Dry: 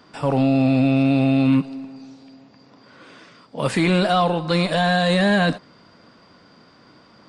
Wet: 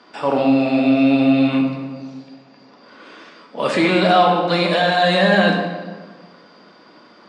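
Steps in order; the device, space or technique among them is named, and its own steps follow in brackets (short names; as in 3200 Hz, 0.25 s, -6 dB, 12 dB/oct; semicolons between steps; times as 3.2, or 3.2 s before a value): supermarket ceiling speaker (BPF 270–5800 Hz; reverb RT60 1.5 s, pre-delay 3 ms, DRR 1 dB); gain +2.5 dB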